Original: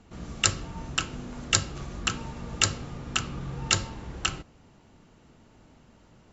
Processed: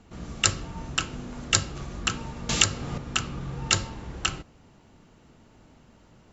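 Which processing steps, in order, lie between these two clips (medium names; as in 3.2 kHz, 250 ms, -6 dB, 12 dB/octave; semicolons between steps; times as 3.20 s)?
2.49–2.98 s: three bands compressed up and down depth 100%; trim +1 dB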